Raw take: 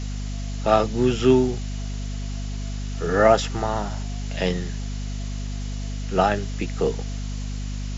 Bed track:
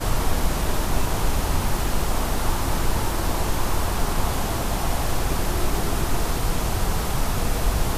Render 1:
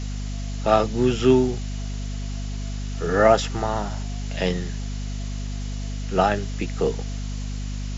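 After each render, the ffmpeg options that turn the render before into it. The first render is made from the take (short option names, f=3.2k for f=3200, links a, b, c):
-af anull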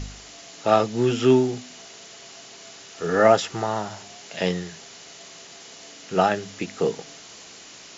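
-af "bandreject=f=50:t=h:w=4,bandreject=f=100:t=h:w=4,bandreject=f=150:t=h:w=4,bandreject=f=200:t=h:w=4,bandreject=f=250:t=h:w=4"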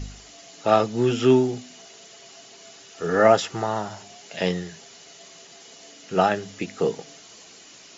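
-af "afftdn=nr=6:nf=-45"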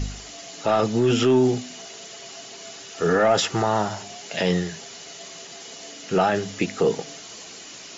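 -af "acontrast=69,alimiter=limit=-11.5dB:level=0:latency=1:release=22"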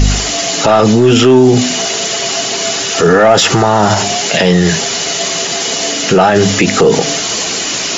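-af "acontrast=30,alimiter=level_in=18.5dB:limit=-1dB:release=50:level=0:latency=1"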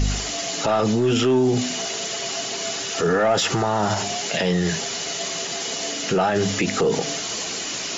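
-af "volume=-11.5dB"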